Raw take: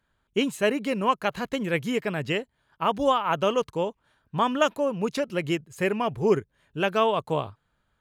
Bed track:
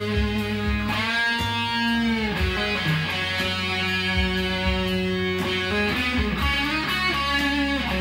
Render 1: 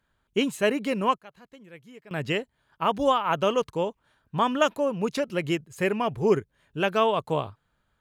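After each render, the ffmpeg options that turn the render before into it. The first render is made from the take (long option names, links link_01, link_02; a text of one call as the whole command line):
ffmpeg -i in.wav -filter_complex "[0:a]asplit=3[link_01][link_02][link_03];[link_01]atrim=end=1.18,asetpts=PTS-STARTPTS,afade=type=out:start_time=1.02:duration=0.16:curve=log:silence=0.0891251[link_04];[link_02]atrim=start=1.18:end=2.11,asetpts=PTS-STARTPTS,volume=-21dB[link_05];[link_03]atrim=start=2.11,asetpts=PTS-STARTPTS,afade=type=in:duration=0.16:curve=log:silence=0.0891251[link_06];[link_04][link_05][link_06]concat=n=3:v=0:a=1" out.wav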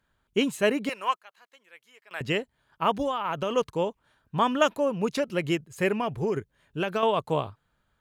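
ffmpeg -i in.wav -filter_complex "[0:a]asettb=1/sr,asplit=3[link_01][link_02][link_03];[link_01]atrim=end=0.894[link_04];[link_02]atrim=start=0.89:end=2.21,asetpts=PTS-STARTPTS,afade=type=in:duration=0.004:curve=qsin,afade=type=out:start_time=1.316:duration=0.004:curve=qsin,highpass=920[link_05];[link_03]atrim=start=2.206[link_06];[link_04][link_05]acrossfade=duration=0.004:curve1=hsin:curve2=qsin[link_07];[link_07][link_06]acrossfade=duration=0.004:curve1=qsin:curve2=hsin,asplit=3[link_08][link_09][link_10];[link_08]afade=type=out:start_time=3.01:duration=0.02[link_11];[link_09]acompressor=threshold=-24dB:ratio=6:attack=3.2:release=140:knee=1:detection=peak,afade=type=in:start_time=3.01:duration=0.02,afade=type=out:start_time=3.5:duration=0.02[link_12];[link_10]afade=type=in:start_time=3.5:duration=0.02[link_13];[link_11][link_12][link_13]amix=inputs=3:normalize=0,asettb=1/sr,asplit=3[link_14][link_15][link_16];[link_14]atrim=end=5.974[link_17];[link_15]atrim=start=5.97:end=7.03,asetpts=PTS-STARTPTS,afade=type=in:duration=0.004:curve=qsin,afade=type=out:start_time=1.056:duration=0.004:curve=qsin,acompressor=threshold=-22dB:ratio=10:attack=3.2:release=140:knee=1:detection=peak[link_18];[link_16]atrim=start=7.026[link_19];[link_17][link_18]acrossfade=duration=0.004:curve1=hsin:curve2=qsin[link_20];[link_20][link_19]acrossfade=duration=0.004:curve1=qsin:curve2=hsin" out.wav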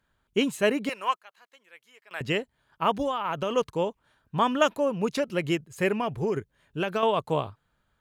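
ffmpeg -i in.wav -af anull out.wav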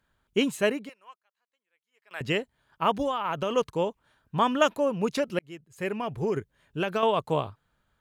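ffmpeg -i in.wav -filter_complex "[0:a]asplit=4[link_01][link_02][link_03][link_04];[link_01]atrim=end=0.94,asetpts=PTS-STARTPTS,afade=type=out:start_time=0.61:duration=0.33:silence=0.0707946[link_05];[link_02]atrim=start=0.94:end=1.91,asetpts=PTS-STARTPTS,volume=-23dB[link_06];[link_03]atrim=start=1.91:end=5.39,asetpts=PTS-STARTPTS,afade=type=in:duration=0.33:silence=0.0707946,afade=type=out:start_time=3.476:duration=0.004:curve=hsin[link_07];[link_04]atrim=start=5.39,asetpts=PTS-STARTPTS,afade=type=in:duration=0.92[link_08];[link_05][link_06][link_07][link_08]concat=n=4:v=0:a=1" out.wav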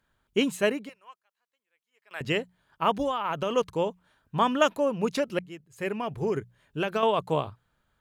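ffmpeg -i in.wav -af "bandreject=frequency=60:width_type=h:width=6,bandreject=frequency=120:width_type=h:width=6,bandreject=frequency=180:width_type=h:width=6" out.wav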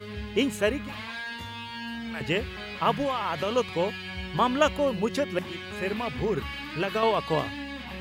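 ffmpeg -i in.wav -i bed.wav -filter_complex "[1:a]volume=-13.5dB[link_01];[0:a][link_01]amix=inputs=2:normalize=0" out.wav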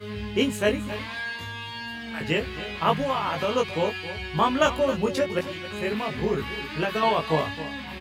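ffmpeg -i in.wav -filter_complex "[0:a]asplit=2[link_01][link_02];[link_02]adelay=19,volume=-2.5dB[link_03];[link_01][link_03]amix=inputs=2:normalize=0,aecho=1:1:270:0.211" out.wav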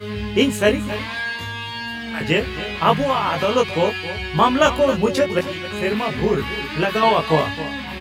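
ffmpeg -i in.wav -af "volume=6.5dB,alimiter=limit=-2dB:level=0:latency=1" out.wav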